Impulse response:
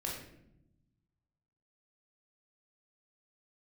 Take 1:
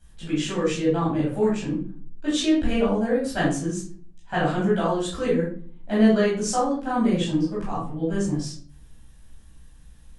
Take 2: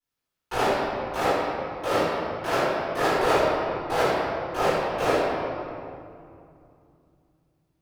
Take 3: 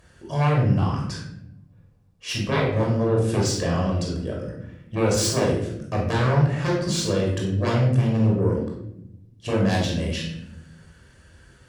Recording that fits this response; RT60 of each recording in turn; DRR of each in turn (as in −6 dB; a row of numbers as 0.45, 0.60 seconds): 3; non-exponential decay, 2.5 s, 0.80 s; −9.5, −20.0, −2.5 decibels